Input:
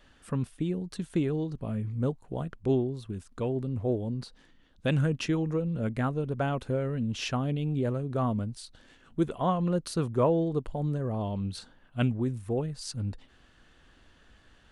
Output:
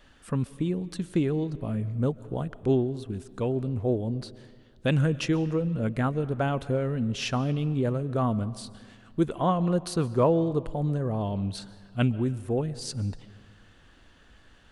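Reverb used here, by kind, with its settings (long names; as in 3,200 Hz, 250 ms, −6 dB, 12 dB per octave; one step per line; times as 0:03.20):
comb and all-pass reverb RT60 1.8 s, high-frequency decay 0.7×, pre-delay 95 ms, DRR 17.5 dB
level +2.5 dB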